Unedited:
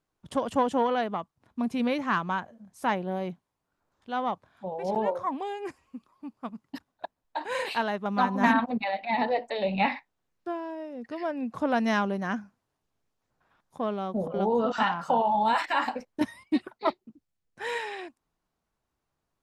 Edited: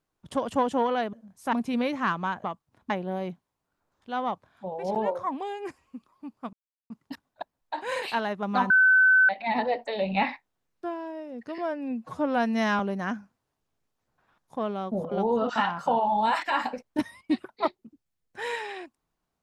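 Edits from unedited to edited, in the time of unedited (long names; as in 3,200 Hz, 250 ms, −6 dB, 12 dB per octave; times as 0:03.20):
0:01.13–0:01.59: swap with 0:02.50–0:02.90
0:06.53: splice in silence 0.37 s
0:08.33–0:08.92: beep over 1,520 Hz −15 dBFS
0:11.21–0:12.02: time-stretch 1.5×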